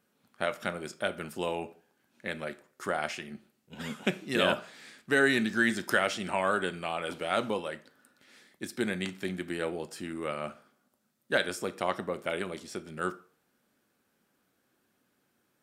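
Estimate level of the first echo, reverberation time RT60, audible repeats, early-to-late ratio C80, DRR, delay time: no echo, 0.45 s, no echo, 22.0 dB, 11.0 dB, no echo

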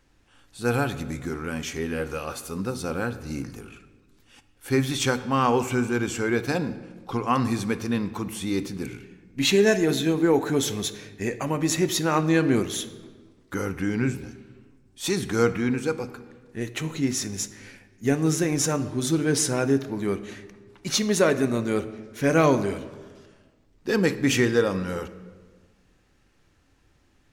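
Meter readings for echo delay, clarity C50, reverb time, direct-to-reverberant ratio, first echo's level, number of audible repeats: no echo, 13.5 dB, 1.4 s, 10.5 dB, no echo, no echo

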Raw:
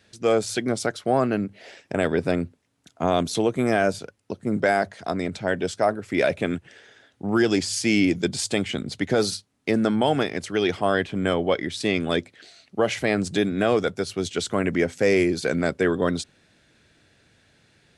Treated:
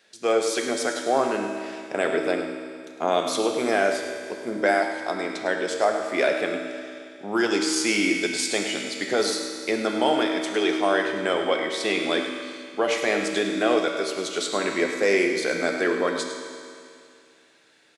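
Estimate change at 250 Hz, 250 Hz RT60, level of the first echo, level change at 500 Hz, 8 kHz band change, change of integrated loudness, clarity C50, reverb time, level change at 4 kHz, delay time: -3.0 dB, 2.4 s, -10.5 dB, 0.0 dB, +2.5 dB, -0.5 dB, 3.5 dB, 2.4 s, +2.5 dB, 104 ms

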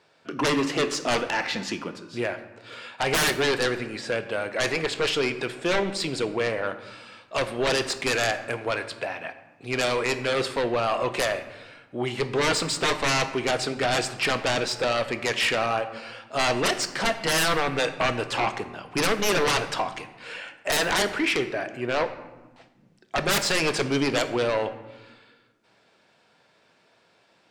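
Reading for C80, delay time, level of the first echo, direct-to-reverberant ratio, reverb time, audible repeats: 13.5 dB, no echo, no echo, 9.0 dB, 1.2 s, no echo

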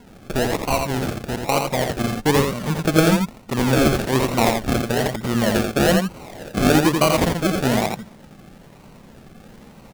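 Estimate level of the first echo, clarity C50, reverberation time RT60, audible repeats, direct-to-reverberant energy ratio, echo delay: -4.5 dB, no reverb, no reverb, 1, no reverb, 85 ms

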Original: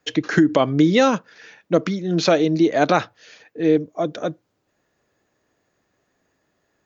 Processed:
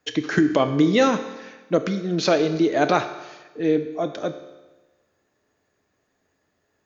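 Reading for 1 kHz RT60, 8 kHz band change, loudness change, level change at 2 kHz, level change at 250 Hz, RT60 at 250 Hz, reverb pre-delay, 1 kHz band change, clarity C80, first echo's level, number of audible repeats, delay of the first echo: 1.2 s, no reading, -2.5 dB, -2.0 dB, -2.5 dB, 1.2 s, 5 ms, -2.0 dB, 12.0 dB, no echo, no echo, no echo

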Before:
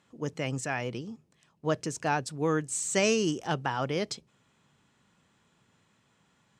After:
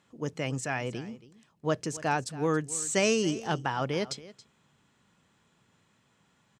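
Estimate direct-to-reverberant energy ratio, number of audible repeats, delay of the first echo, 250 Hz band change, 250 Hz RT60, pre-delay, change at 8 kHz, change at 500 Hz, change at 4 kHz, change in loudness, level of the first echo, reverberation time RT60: no reverb, 1, 276 ms, 0.0 dB, no reverb, no reverb, 0.0 dB, 0.0 dB, 0.0 dB, 0.0 dB, -18.0 dB, no reverb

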